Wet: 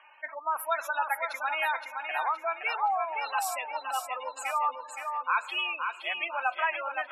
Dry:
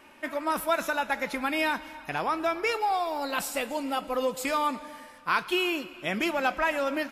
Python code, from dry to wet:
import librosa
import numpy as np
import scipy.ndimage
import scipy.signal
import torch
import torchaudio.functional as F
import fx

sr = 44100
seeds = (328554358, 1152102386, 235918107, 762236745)

y = fx.spec_gate(x, sr, threshold_db=-15, keep='strong')
y = scipy.signal.sosfilt(scipy.signal.cheby1(3, 1.0, 790.0, 'highpass', fs=sr, output='sos'), y)
y = fx.echo_feedback(y, sr, ms=519, feedback_pct=38, wet_db=-5.5)